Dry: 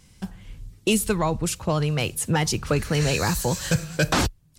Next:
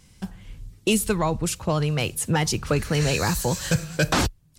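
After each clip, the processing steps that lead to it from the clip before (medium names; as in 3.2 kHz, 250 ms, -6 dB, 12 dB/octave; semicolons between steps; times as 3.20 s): no audible change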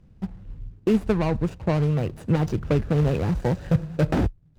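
median filter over 41 samples; treble shelf 8.2 kHz -11 dB; trim +2.5 dB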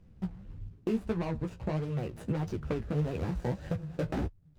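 compression 3:1, threshold -27 dBFS, peak gain reduction 9.5 dB; flange 1.6 Hz, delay 9.8 ms, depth 8.4 ms, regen +19%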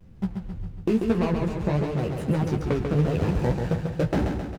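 on a send: feedback delay 137 ms, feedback 58%, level -5 dB; on the sum: vibrato 1 Hz 65 cents; trim +7.5 dB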